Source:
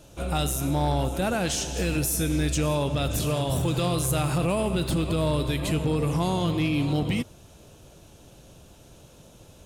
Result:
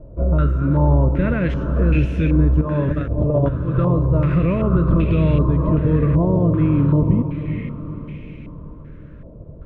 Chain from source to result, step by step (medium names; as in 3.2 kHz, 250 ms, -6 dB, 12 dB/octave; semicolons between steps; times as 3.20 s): Butterworth band-stop 780 Hz, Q 2.5; tilt EQ -3.5 dB/octave; 2.61–3.75 s: compressor with a negative ratio -19 dBFS, ratio -0.5; on a send: echo that smears into a reverb 468 ms, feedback 51%, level -9.5 dB; on the sum: step-sequenced low-pass 2.6 Hz 750–2400 Hz